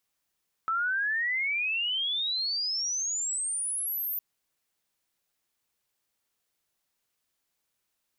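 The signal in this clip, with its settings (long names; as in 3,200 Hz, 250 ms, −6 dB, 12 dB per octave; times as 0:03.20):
glide logarithmic 1,300 Hz → 14,000 Hz −25 dBFS → −29 dBFS 3.51 s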